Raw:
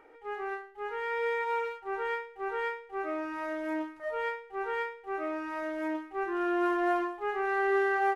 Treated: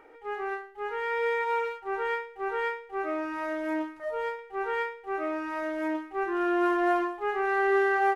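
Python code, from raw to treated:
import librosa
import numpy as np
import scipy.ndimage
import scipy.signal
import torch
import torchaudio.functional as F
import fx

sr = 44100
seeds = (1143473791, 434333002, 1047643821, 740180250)

y = fx.dynamic_eq(x, sr, hz=2100.0, q=0.86, threshold_db=-47.0, ratio=4.0, max_db=-6, at=(3.99, 4.39))
y = y * 10.0 ** (3.0 / 20.0)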